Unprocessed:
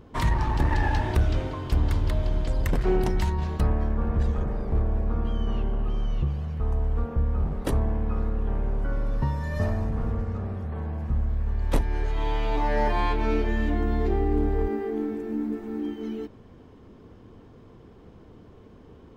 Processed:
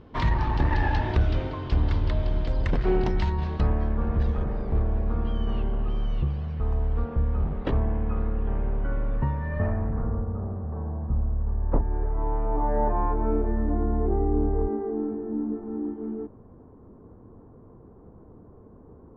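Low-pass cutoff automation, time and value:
low-pass 24 dB/octave
7.02 s 4.8 kHz
7.85 s 3.2 kHz
8.83 s 3.2 kHz
9.91 s 1.9 kHz
10.27 s 1.2 kHz

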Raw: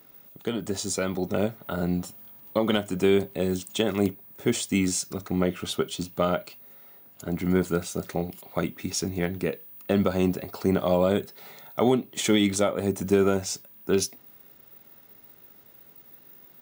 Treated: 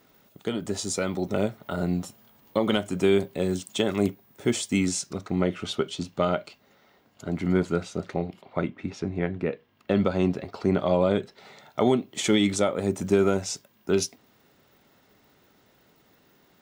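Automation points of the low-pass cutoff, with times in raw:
4.73 s 11 kHz
5.23 s 6.2 kHz
7.46 s 6.2 kHz
8.80 s 2.3 kHz
9.46 s 2.3 kHz
9.89 s 4.4 kHz
11.15 s 4.4 kHz
12.05 s 9 kHz

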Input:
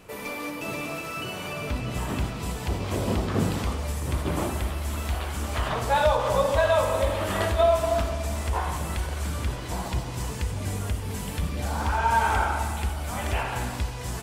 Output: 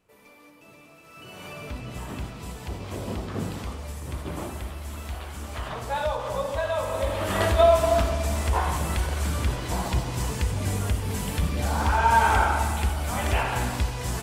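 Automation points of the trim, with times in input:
0.97 s -19 dB
1.44 s -6 dB
6.74 s -6 dB
7.49 s +3 dB

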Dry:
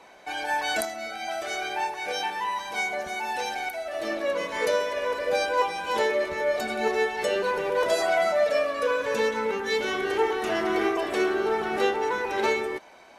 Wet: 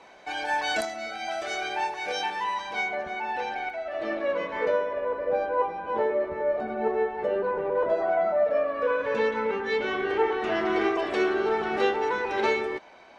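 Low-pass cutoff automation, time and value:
2.49 s 6.6 kHz
3.01 s 2.5 kHz
4.39 s 2.5 kHz
5.05 s 1.1 kHz
8.44 s 1.1 kHz
9.22 s 2.8 kHz
10.32 s 2.8 kHz
10.85 s 4.7 kHz

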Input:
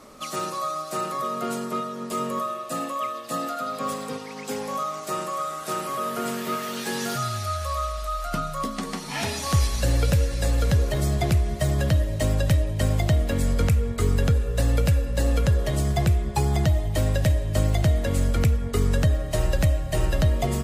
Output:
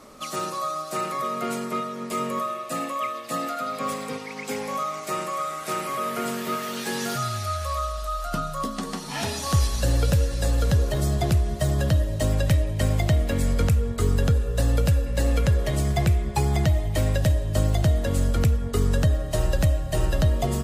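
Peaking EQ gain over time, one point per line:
peaking EQ 2.2 kHz 0.36 oct
0 dB
from 0.95 s +8 dB
from 6.25 s +1 dB
from 7.79 s -6 dB
from 12.32 s +1.5 dB
from 13.63 s -5 dB
from 15.06 s +3 dB
from 17.18 s -5.5 dB

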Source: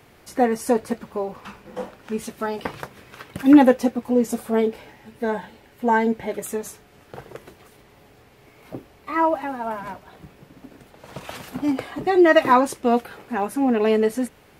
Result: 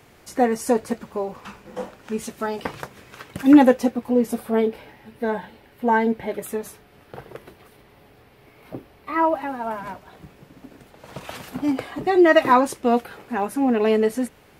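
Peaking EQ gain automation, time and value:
peaking EQ 7 kHz 0.65 oct
3.66 s +3 dB
4.26 s -8 dB
9.15 s -8 dB
9.70 s -0.5 dB

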